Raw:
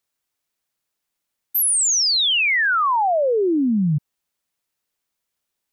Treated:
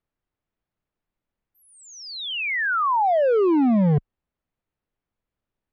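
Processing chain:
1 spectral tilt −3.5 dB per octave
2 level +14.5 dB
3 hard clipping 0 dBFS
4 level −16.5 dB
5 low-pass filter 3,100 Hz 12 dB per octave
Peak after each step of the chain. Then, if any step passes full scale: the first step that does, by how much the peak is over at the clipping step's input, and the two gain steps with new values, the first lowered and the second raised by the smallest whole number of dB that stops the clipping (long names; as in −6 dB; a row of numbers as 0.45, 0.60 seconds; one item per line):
−5.5, +9.0, 0.0, −16.5, −16.5 dBFS
step 2, 9.0 dB
step 2 +5.5 dB, step 4 −7.5 dB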